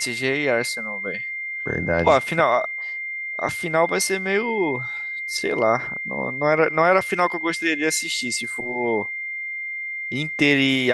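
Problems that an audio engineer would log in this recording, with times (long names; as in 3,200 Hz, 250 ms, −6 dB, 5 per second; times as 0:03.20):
whistle 2,100 Hz −27 dBFS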